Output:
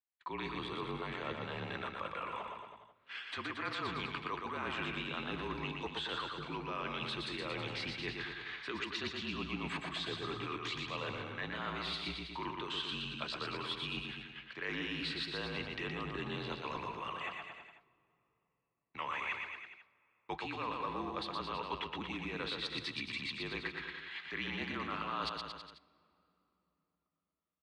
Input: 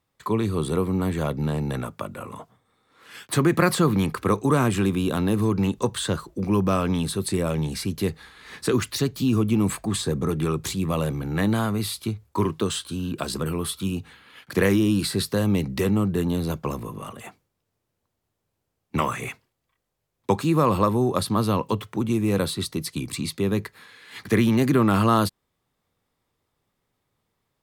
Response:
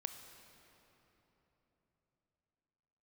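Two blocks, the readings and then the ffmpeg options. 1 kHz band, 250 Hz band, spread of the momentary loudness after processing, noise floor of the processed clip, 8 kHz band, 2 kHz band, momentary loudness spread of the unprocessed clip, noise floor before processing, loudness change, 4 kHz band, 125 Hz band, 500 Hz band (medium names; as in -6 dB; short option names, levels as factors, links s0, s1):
-11.5 dB, -21.5 dB, 6 LU, -84 dBFS, -26.0 dB, -5.5 dB, 11 LU, -78 dBFS, -15.5 dB, -6.0 dB, -22.5 dB, -18.0 dB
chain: -filter_complex "[0:a]lowpass=f=3000:w=0.5412,lowpass=f=3000:w=1.3066,aderivative,agate=range=0.0398:threshold=0.001:ratio=16:detection=peak,areverse,acompressor=threshold=0.00158:ratio=5,areverse,afreqshift=-41,aecho=1:1:120|228|325.2|412.7|491.4:0.631|0.398|0.251|0.158|0.1,asplit=2[s0][s1];[1:a]atrim=start_sample=2205[s2];[s1][s2]afir=irnorm=-1:irlink=0,volume=0.224[s3];[s0][s3]amix=inputs=2:normalize=0,volume=5.96"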